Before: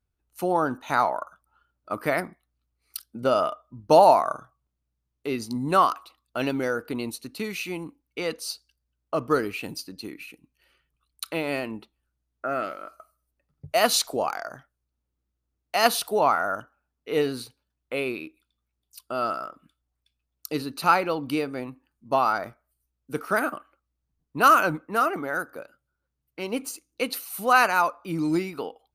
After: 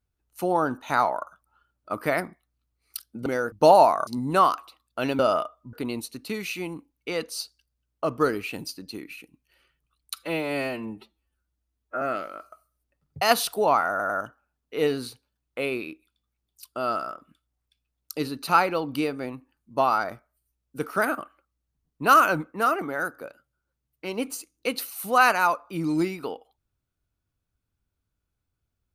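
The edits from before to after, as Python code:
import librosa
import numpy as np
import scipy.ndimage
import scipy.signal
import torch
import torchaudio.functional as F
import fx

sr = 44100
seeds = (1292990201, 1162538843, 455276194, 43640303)

y = fx.edit(x, sr, fx.swap(start_s=3.26, length_s=0.54, other_s=6.57, other_length_s=0.26),
    fx.cut(start_s=4.35, length_s=1.1),
    fx.stretch_span(start_s=11.24, length_s=1.25, factor=1.5),
    fx.cut(start_s=13.69, length_s=2.07),
    fx.stutter(start_s=16.44, slice_s=0.1, count=3), tone=tone)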